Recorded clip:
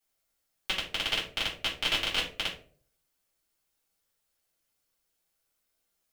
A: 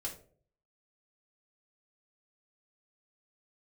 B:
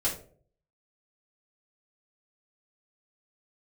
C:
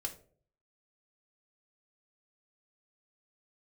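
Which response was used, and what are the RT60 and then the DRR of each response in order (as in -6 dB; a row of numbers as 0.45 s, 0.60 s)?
B; 0.50 s, 0.50 s, 0.50 s; -1.5 dB, -6.0 dB, 4.0 dB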